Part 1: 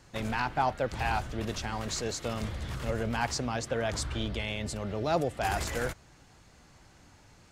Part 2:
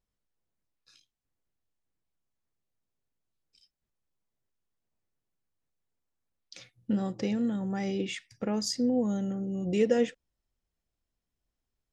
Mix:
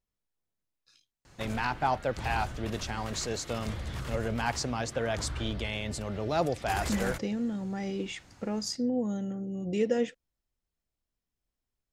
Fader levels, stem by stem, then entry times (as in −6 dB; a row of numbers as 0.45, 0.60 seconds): 0.0, −2.5 decibels; 1.25, 0.00 seconds